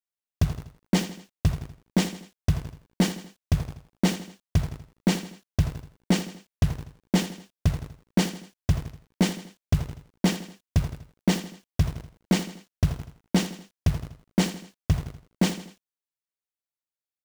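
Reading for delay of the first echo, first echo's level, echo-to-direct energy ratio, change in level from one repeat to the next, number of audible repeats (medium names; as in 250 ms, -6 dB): 81 ms, -12.0 dB, -11.0 dB, -6.5 dB, 3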